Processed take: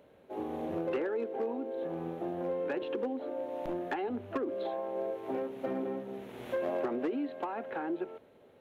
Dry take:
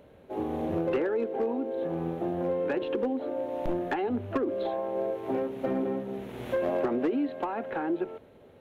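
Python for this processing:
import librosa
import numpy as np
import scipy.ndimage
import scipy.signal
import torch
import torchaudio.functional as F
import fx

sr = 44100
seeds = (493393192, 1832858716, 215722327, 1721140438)

y = fx.low_shelf(x, sr, hz=130.0, db=-11.5)
y = y * librosa.db_to_amplitude(-4.0)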